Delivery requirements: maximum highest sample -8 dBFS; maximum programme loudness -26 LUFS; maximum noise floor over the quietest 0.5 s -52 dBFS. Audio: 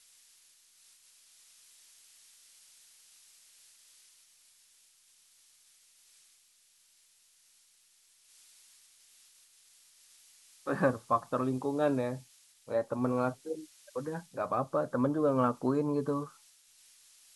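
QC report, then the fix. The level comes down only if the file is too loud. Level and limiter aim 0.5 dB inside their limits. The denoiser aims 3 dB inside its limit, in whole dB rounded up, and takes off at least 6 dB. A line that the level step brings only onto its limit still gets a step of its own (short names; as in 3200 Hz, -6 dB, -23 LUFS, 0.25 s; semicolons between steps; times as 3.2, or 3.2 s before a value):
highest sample -14.0 dBFS: OK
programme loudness -32.5 LUFS: OK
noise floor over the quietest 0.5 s -66 dBFS: OK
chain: none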